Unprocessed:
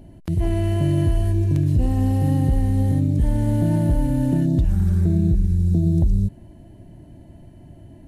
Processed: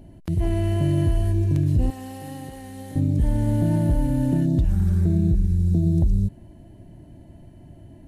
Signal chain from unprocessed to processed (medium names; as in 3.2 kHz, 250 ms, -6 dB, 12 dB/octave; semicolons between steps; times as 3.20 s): 1.90–2.96 s: high-pass 1.1 kHz 6 dB/octave; trim -1.5 dB